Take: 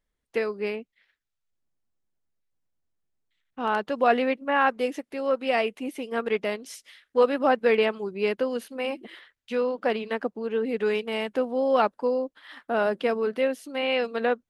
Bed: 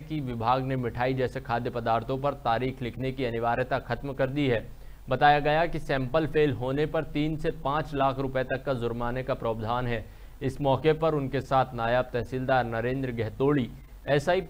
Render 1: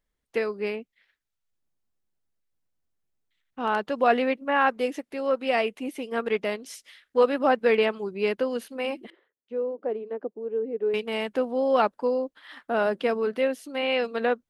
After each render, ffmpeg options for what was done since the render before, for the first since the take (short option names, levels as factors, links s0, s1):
-filter_complex "[0:a]asettb=1/sr,asplit=3[s0][s1][s2];[s0]atrim=end=9.104[s3];[s1]atrim=start=9.1:end=10.94,asetpts=PTS-STARTPTS,afade=t=in:d=0.004:c=qsin,afade=t=out:st=1.836:d=0.004:c=qsin,bandpass=f=400:t=q:w=2.1[s4];[s2]atrim=start=10.936[s5];[s3][s4]acrossfade=d=0.004:c1=hsin:c2=qsin[s6];[s6][s5]acrossfade=d=0.004:c1=qsin:c2=hsin"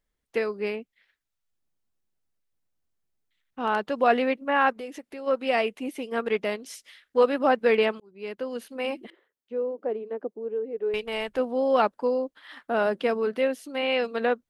-filter_complex "[0:a]asplit=3[s0][s1][s2];[s0]afade=t=out:st=4.72:d=0.02[s3];[s1]acompressor=threshold=0.0158:ratio=3:attack=3.2:release=140:knee=1:detection=peak,afade=t=in:st=4.72:d=0.02,afade=t=out:st=5.26:d=0.02[s4];[s2]afade=t=in:st=5.26:d=0.02[s5];[s3][s4][s5]amix=inputs=3:normalize=0,asplit=3[s6][s7][s8];[s6]afade=t=out:st=10.53:d=0.02[s9];[s7]asubboost=boost=12:cutoff=60,afade=t=in:st=10.53:d=0.02,afade=t=out:st=11.38:d=0.02[s10];[s8]afade=t=in:st=11.38:d=0.02[s11];[s9][s10][s11]amix=inputs=3:normalize=0,asplit=2[s12][s13];[s12]atrim=end=8,asetpts=PTS-STARTPTS,afade=t=out:st=7.996:d=0.004:c=hsin[s14];[s13]atrim=start=8,asetpts=PTS-STARTPTS,afade=t=in:d=0.86[s15];[s14][s15]concat=n=2:v=0:a=1"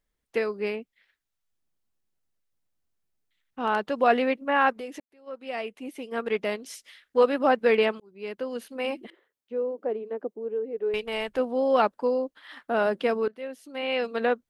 -filter_complex "[0:a]asplit=3[s0][s1][s2];[s0]atrim=end=5,asetpts=PTS-STARTPTS,afade=t=out:st=4.996:d=0.004:c=hsin[s3];[s1]atrim=start=5:end=13.28,asetpts=PTS-STARTPTS,afade=t=in:d=1.54,afade=t=out:st=8.276:d=0.004:c=hsin:silence=0.0944061[s4];[s2]atrim=start=13.28,asetpts=PTS-STARTPTS,afade=t=in:d=0.89:silence=0.0944061[s5];[s3][s4][s5]concat=n=3:v=0:a=1"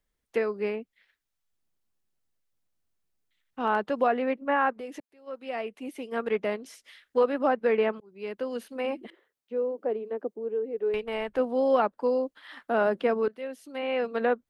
-filter_complex "[0:a]acrossover=split=170|2200[s0][s1][s2];[s2]acompressor=threshold=0.00355:ratio=4[s3];[s0][s1][s3]amix=inputs=3:normalize=0,alimiter=limit=0.211:level=0:latency=1:release=363"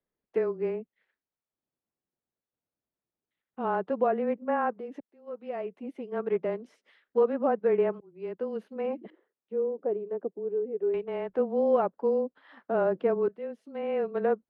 -af "bandpass=f=410:t=q:w=0.61:csg=0,afreqshift=-19"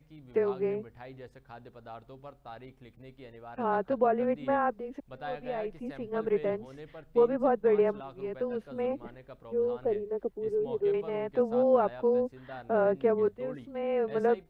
-filter_complex "[1:a]volume=0.106[s0];[0:a][s0]amix=inputs=2:normalize=0"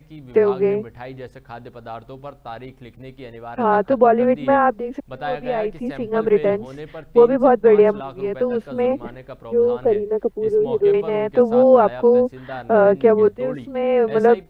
-af "volume=3.98,alimiter=limit=0.708:level=0:latency=1"